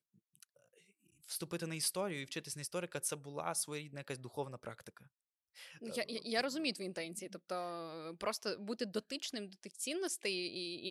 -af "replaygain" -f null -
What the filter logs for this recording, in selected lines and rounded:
track_gain = +20.8 dB
track_peak = 0.070